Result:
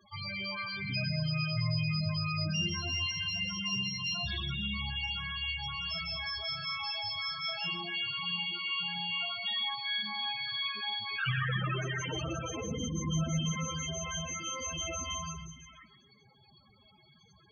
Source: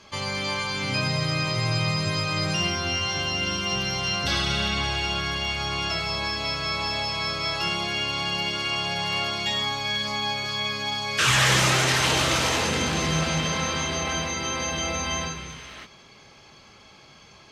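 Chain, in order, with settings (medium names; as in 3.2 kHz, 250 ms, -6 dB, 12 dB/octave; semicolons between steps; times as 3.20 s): dynamic bell 850 Hz, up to -3 dB, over -40 dBFS, Q 4.3; loudest bins only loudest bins 8; filtered feedback delay 127 ms, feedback 32%, low-pass 2.5 kHz, level -10 dB; trim -5 dB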